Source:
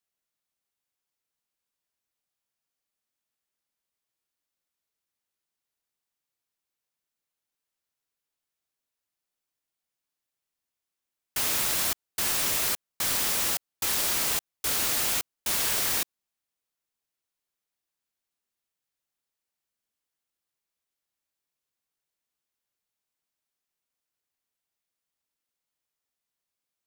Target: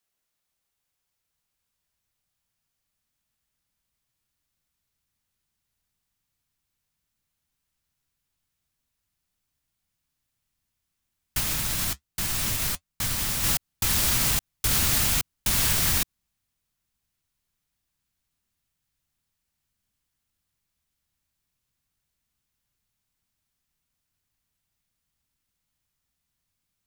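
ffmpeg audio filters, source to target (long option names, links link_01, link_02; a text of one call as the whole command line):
ffmpeg -i in.wav -filter_complex "[0:a]asubboost=boost=7:cutoff=160,alimiter=limit=-18.5dB:level=0:latency=1:release=88,asplit=3[link_01][link_02][link_03];[link_01]afade=type=out:start_time=11.39:duration=0.02[link_04];[link_02]flanger=delay=5.6:depth=3.9:regen=-60:speed=1.4:shape=sinusoidal,afade=type=in:start_time=11.39:duration=0.02,afade=type=out:start_time=13.43:duration=0.02[link_05];[link_03]afade=type=in:start_time=13.43:duration=0.02[link_06];[link_04][link_05][link_06]amix=inputs=3:normalize=0,volume=6dB" out.wav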